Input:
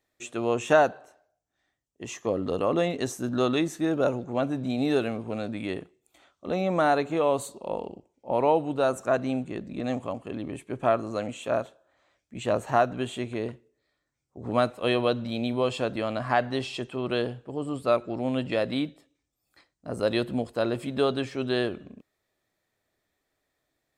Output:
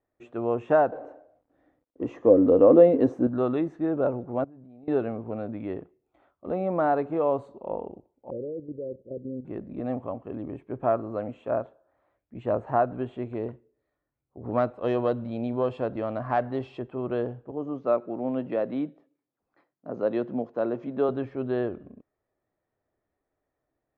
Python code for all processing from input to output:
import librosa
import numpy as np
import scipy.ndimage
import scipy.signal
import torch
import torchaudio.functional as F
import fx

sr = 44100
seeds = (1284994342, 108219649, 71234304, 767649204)

y = fx.chain(x, sr, fx.law_mismatch(coded='mu'),
    fx.high_shelf(hz=9800.0, db=3.0),
    fx.small_body(hz=(290.0, 490.0), ring_ms=35, db=13), at=(0.92, 3.27))
y = fx.chain(y, sr, fx.high_shelf(hz=3500.0, db=-10.0),
    fx.level_steps(step_db=24), at=(4.44, 4.88))
y = fx.chain(y, sr, fx.cheby_ripple(hz=550.0, ripple_db=3),
    fx.low_shelf(hz=120.0, db=-4.0),
    fx.level_steps(step_db=11), at=(8.3, 9.45))
y = fx.chain(y, sr, fx.self_delay(depth_ms=0.075),
    fx.high_shelf(hz=5100.0, db=9.5), at=(13.22, 16.79))
y = fx.chain(y, sr, fx.highpass(hz=150.0, slope=24),
    fx.resample_bad(factor=3, down='none', up='filtered'), at=(17.51, 21.09))
y = scipy.signal.sosfilt(scipy.signal.butter(2, 1100.0, 'lowpass', fs=sr, output='sos'), y)
y = fx.peak_eq(y, sr, hz=180.0, db=-3.0, octaves=0.66)